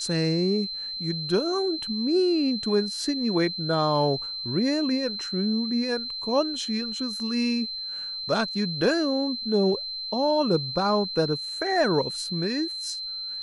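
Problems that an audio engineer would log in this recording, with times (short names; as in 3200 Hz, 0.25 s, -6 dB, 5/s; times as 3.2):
tone 4100 Hz -31 dBFS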